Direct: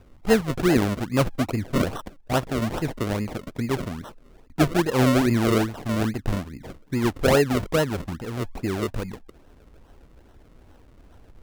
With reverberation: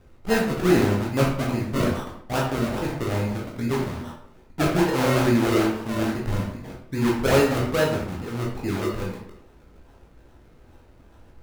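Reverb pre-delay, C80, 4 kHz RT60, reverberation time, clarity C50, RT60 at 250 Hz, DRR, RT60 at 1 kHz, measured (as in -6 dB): 13 ms, 7.5 dB, 0.45 s, 0.65 s, 3.5 dB, 0.65 s, -3.5 dB, 0.65 s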